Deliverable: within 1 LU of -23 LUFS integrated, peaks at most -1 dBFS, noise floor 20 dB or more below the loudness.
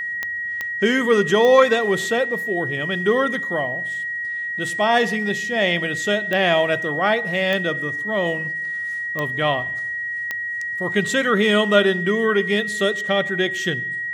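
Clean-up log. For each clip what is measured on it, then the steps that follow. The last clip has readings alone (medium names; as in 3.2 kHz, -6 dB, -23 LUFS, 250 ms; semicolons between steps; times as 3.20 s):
clicks found 7; steady tone 1.9 kHz; tone level -24 dBFS; loudness -20.0 LUFS; peak level -1.0 dBFS; loudness target -23.0 LUFS
-> de-click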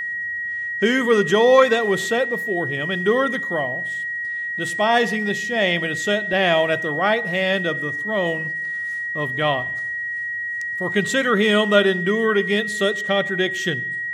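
clicks found 0; steady tone 1.9 kHz; tone level -24 dBFS
-> band-stop 1.9 kHz, Q 30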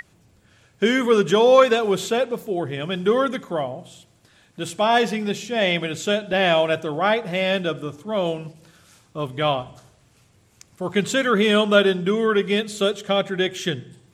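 steady tone not found; loudness -21.0 LUFS; peak level -1.5 dBFS; loudness target -23.0 LUFS
-> trim -2 dB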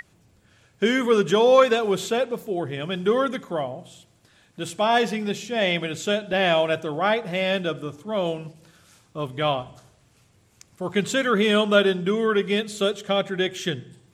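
loudness -23.0 LUFS; peak level -3.5 dBFS; noise floor -60 dBFS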